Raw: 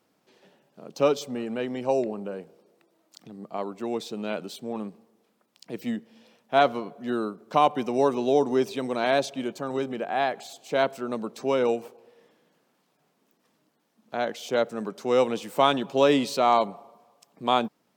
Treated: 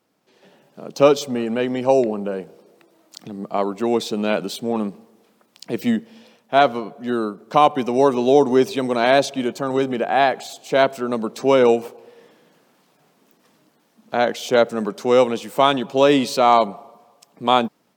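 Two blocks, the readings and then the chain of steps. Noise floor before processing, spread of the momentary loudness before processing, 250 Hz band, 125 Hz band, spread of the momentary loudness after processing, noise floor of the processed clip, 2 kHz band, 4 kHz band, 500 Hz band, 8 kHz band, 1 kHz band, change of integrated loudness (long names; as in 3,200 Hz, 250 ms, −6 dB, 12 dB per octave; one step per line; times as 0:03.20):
−71 dBFS, 13 LU, +7.5 dB, +7.5 dB, 11 LU, −62 dBFS, +7.5 dB, +6.5 dB, +7.5 dB, +7.5 dB, +6.5 dB, +7.0 dB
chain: automatic gain control gain up to 10.5 dB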